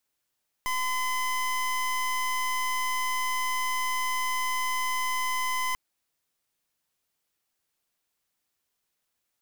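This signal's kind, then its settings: pulse 1020 Hz, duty 26% -28 dBFS 5.09 s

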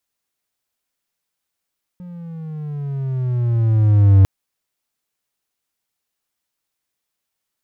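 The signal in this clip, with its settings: gliding synth tone triangle, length 2.25 s, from 180 Hz, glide -11 st, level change +26 dB, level -4 dB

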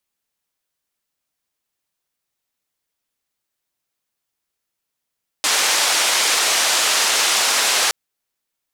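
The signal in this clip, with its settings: noise band 530–7300 Hz, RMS -17.5 dBFS 2.47 s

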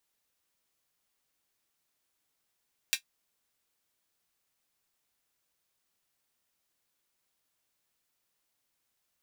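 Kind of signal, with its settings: closed hi-hat, high-pass 2400 Hz, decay 0.10 s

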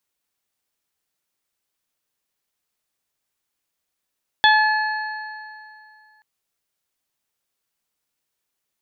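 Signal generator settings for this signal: additive tone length 1.78 s, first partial 860 Hz, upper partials 0.5/-17/0/-11 dB, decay 2.37 s, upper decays 2.50/1.80/0.31/2.30 s, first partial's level -13.5 dB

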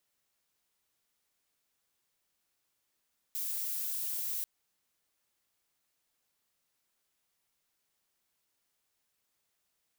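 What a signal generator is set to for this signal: noise violet, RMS -35.5 dBFS 1.09 s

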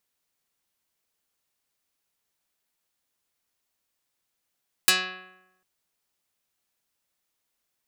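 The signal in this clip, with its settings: plucked string F#3, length 0.75 s, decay 0.95 s, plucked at 0.41, dark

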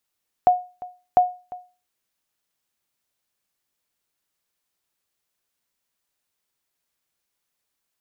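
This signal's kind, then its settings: sonar ping 724 Hz, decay 0.33 s, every 0.70 s, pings 2, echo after 0.35 s, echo -20 dB -7.5 dBFS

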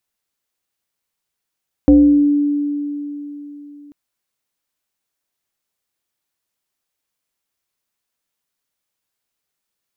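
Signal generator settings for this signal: FM tone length 2.04 s, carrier 290 Hz, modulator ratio 0.79, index 0.67, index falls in 0.76 s exponential, decay 3.63 s, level -4.5 dB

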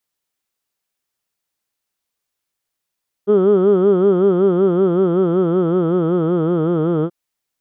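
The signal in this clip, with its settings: formant vowel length 3.83 s, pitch 198 Hz, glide -3.5 st, vibrato depth 1.2 st, F1 410 Hz, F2 1300 Hz, F3 3200 Hz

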